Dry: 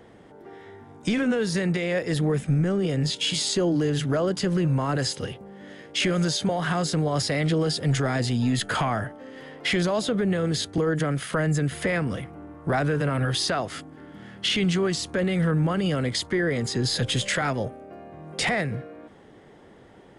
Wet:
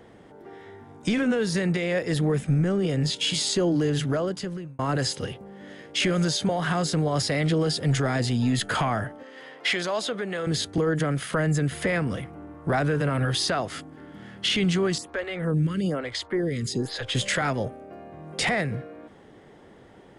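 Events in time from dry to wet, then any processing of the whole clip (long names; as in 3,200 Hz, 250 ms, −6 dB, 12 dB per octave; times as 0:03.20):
0:04.03–0:04.79: fade out
0:09.23–0:10.47: meter weighting curve A
0:14.98–0:17.15: phaser with staggered stages 1.1 Hz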